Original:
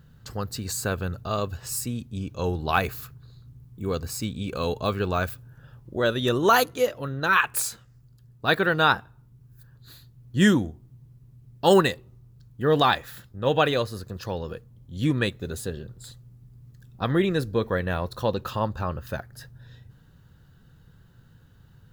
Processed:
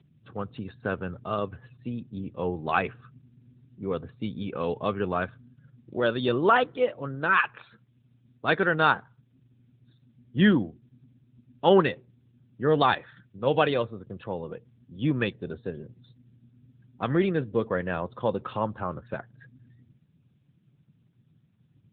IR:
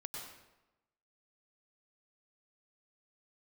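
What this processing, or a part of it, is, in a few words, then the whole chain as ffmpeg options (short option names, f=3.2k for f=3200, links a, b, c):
mobile call with aggressive noise cancelling: -af "highpass=120,afftdn=nr=32:nf=-46,volume=-1dB" -ar 8000 -c:a libopencore_amrnb -b:a 10200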